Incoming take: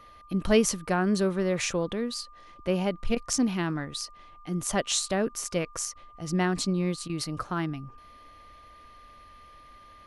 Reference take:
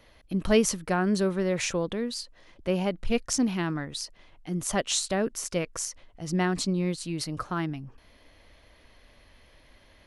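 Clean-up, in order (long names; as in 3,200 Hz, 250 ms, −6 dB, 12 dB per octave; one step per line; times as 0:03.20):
notch filter 1,200 Hz, Q 30
repair the gap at 0:03.15/0:05.94/0:07.08, 13 ms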